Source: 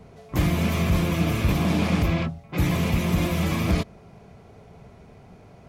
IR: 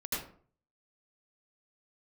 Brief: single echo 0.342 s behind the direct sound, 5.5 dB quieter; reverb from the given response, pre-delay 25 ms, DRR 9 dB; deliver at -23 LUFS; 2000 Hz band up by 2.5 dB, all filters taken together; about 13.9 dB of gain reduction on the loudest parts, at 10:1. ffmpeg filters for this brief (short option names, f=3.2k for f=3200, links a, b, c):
-filter_complex "[0:a]equalizer=f=2k:t=o:g=3,acompressor=threshold=-31dB:ratio=10,aecho=1:1:342:0.531,asplit=2[a][b];[1:a]atrim=start_sample=2205,adelay=25[c];[b][c]afir=irnorm=-1:irlink=0,volume=-13dB[d];[a][d]amix=inputs=2:normalize=0,volume=10.5dB"